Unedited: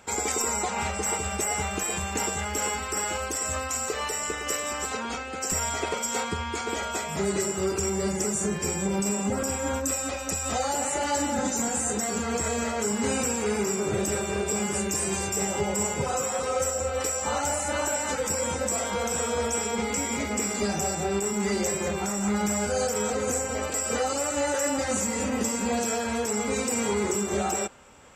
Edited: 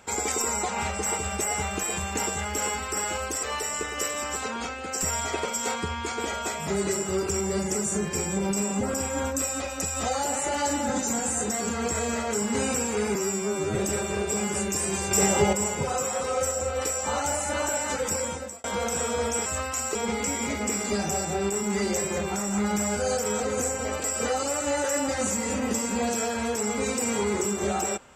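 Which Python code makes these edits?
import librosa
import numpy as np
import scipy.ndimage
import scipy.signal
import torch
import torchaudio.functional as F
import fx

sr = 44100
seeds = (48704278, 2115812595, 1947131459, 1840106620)

y = fx.edit(x, sr, fx.move(start_s=3.43, length_s=0.49, to_s=19.65),
    fx.stretch_span(start_s=13.64, length_s=0.3, factor=2.0),
    fx.clip_gain(start_s=15.3, length_s=0.42, db=6.0),
    fx.fade_out_span(start_s=18.35, length_s=0.48), tone=tone)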